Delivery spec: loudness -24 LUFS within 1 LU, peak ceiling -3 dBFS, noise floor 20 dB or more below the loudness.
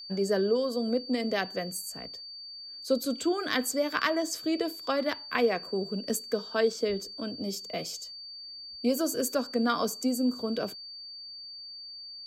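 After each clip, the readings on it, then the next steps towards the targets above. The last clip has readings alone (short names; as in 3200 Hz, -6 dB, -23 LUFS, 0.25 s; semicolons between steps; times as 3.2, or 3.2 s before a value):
steady tone 4600 Hz; tone level -41 dBFS; loudness -30.0 LUFS; peak -13.0 dBFS; loudness target -24.0 LUFS
-> notch 4600 Hz, Q 30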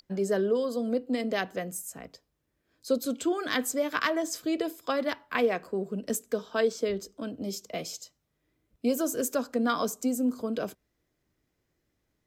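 steady tone none; loudness -30.0 LUFS; peak -13.0 dBFS; loudness target -24.0 LUFS
-> gain +6 dB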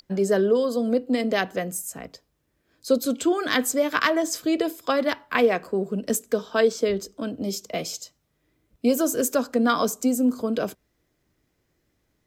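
loudness -24.0 LUFS; peak -7.0 dBFS; noise floor -72 dBFS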